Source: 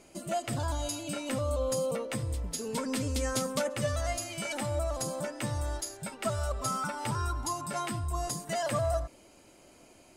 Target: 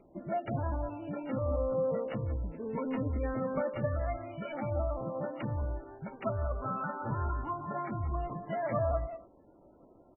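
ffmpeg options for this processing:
ffmpeg -i in.wav -filter_complex "[0:a]asplit=2[link_01][link_02];[link_02]adelay=180,highpass=300,lowpass=3400,asoftclip=type=hard:threshold=-29.5dB,volume=-7dB[link_03];[link_01][link_03]amix=inputs=2:normalize=0,acrossover=split=490[link_04][link_05];[link_05]adynamicsmooth=sensitivity=1.5:basefreq=1200[link_06];[link_04][link_06]amix=inputs=2:normalize=0,aresample=11025,aresample=44100,bandreject=frequency=121.8:width_type=h:width=4,bandreject=frequency=243.6:width_type=h:width=4" -ar 16000 -c:a libmp3lame -b:a 8k out.mp3

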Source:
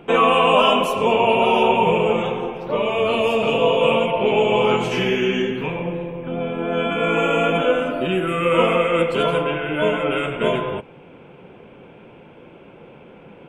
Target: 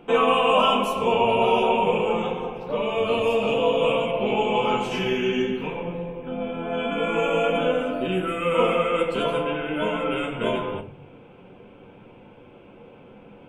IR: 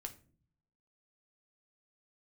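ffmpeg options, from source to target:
-filter_complex "[0:a]equalizer=frequency=1900:width_type=o:width=0.41:gain=-4[link_01];[1:a]atrim=start_sample=2205[link_02];[link_01][link_02]afir=irnorm=-1:irlink=0"

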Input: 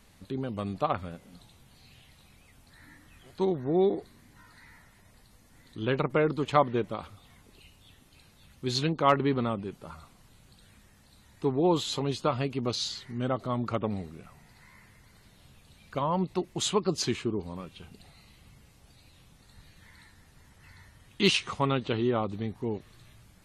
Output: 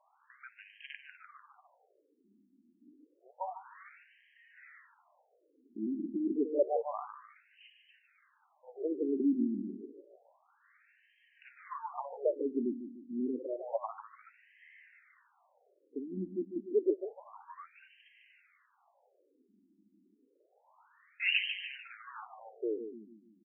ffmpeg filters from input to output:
ffmpeg -i in.wav -filter_complex "[0:a]acrossover=split=110|920|3200[link_01][link_02][link_03][link_04];[link_02]acrusher=bits=5:mode=log:mix=0:aa=0.000001[link_05];[link_01][link_05][link_03][link_04]amix=inputs=4:normalize=0,asettb=1/sr,asplit=3[link_06][link_07][link_08];[link_06]atrim=end=21.724[link_09];[link_07]atrim=start=21.72:end=22.5,asetpts=PTS-STARTPTS,afade=type=in:duration=0.004:curve=qsin,afade=type=out:start_time=0.776:duration=0.004:curve=qsin,aeval=exprs='(tanh(63.1*val(0)+0.75)-tanh(0.75))/63.1':channel_layout=same[link_10];[link_08]atrim=start=22.496[link_11];[link_09][link_10]acrossfade=duration=0.004:curve1=hsin:curve2=qsin[link_12];[link_12][link_11]acrossfade=duration=0.004:curve1=qsin:curve2=hsin,aecho=1:1:149|298|447|596|745:0.355|0.163|0.0751|0.0345|0.0159,afftfilt=real='re*between(b*sr/1024,250*pow(2300/250,0.5+0.5*sin(2*PI*0.29*pts/sr))/1.41,250*pow(2300/250,0.5+0.5*sin(2*PI*0.29*pts/sr))*1.41)':imag='im*between(b*sr/1024,250*pow(2300/250,0.5+0.5*sin(2*PI*0.29*pts/sr))/1.41,250*pow(2300/250,0.5+0.5*sin(2*PI*0.29*pts/sr))*1.41)':win_size=1024:overlap=0.75" out.wav

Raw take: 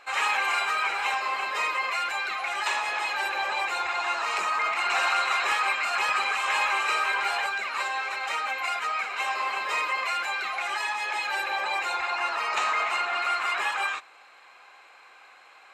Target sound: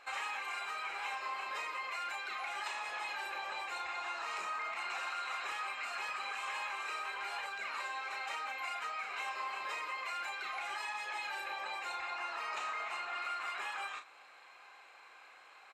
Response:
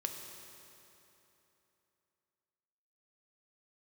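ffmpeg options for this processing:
-filter_complex "[0:a]acompressor=threshold=-32dB:ratio=6,asplit=2[link_01][link_02];[link_02]adelay=35,volume=-7dB[link_03];[link_01][link_03]amix=inputs=2:normalize=0,volume=-6dB"

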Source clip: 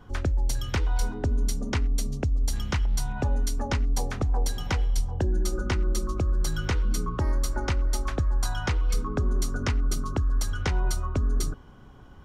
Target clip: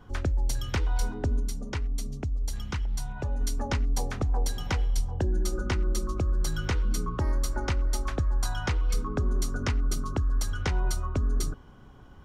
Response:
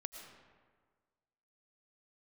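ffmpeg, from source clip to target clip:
-filter_complex "[0:a]asettb=1/sr,asplit=3[link_01][link_02][link_03];[link_01]atrim=end=1.404[link_04];[link_02]atrim=start=1.4:end=3.41,asetpts=PTS-STARTPTS,afade=type=in:duration=0.004:curve=qsin,afade=type=out:start_time=2.006:duration=0.004:curve=qsin,flanger=delay=0.3:depth=1.9:regen=-62:speed=1.4:shape=triangular[link_05];[link_03]atrim=start=3.406[link_06];[link_04][link_05]acrossfade=duration=0.004:curve1=hsin:curve2=qsin[link_07];[link_07][link_06]acrossfade=duration=0.004:curve1=qsin:curve2=hsin,volume=-1.5dB"

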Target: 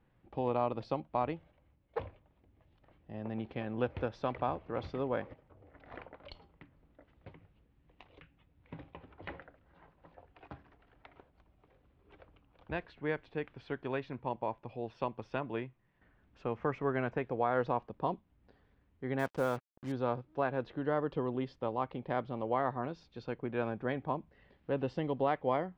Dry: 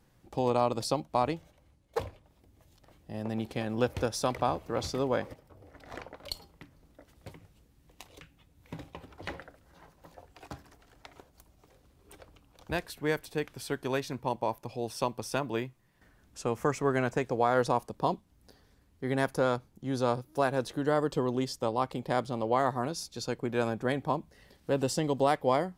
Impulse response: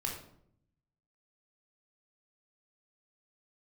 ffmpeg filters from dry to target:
-filter_complex "[0:a]lowpass=frequency=3000:width=0.5412,lowpass=frequency=3000:width=1.3066,asettb=1/sr,asplit=3[link_01][link_02][link_03];[link_01]atrim=end=19.194[link_04];[link_02]atrim=start=19.19:end=19.92,asetpts=PTS-STARTPTS,afade=type=in:duration=0.004:curve=qsin,afade=type=out:start_time=0.726:duration=0.004:curve=qsin,acrusher=bits=6:mix=0:aa=0.5[link_05];[link_03]atrim=start=19.916[link_06];[link_04][link_05]acrossfade=duration=0.004:curve1=hsin:curve2=qsin[link_07];[link_07][link_06]acrossfade=duration=0.004:curve1=qsin:curve2=hsin,volume=-5dB"

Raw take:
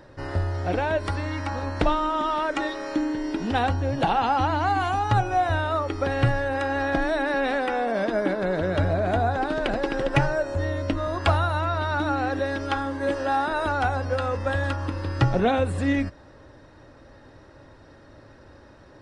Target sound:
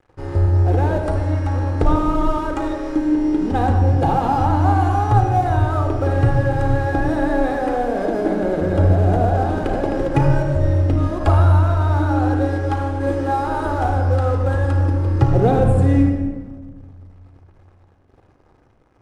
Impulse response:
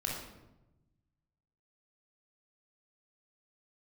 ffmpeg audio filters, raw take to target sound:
-filter_complex "[0:a]equalizer=frequency=3000:width=0.53:gain=-15,aeval=exprs='sgn(val(0))*max(abs(val(0))-0.00473,0)':channel_layout=same,asplit=2[link_01][link_02];[1:a]atrim=start_sample=2205,asetrate=25137,aresample=44100[link_03];[link_02][link_03]afir=irnorm=-1:irlink=0,volume=-2.5dB[link_04];[link_01][link_04]amix=inputs=2:normalize=0"

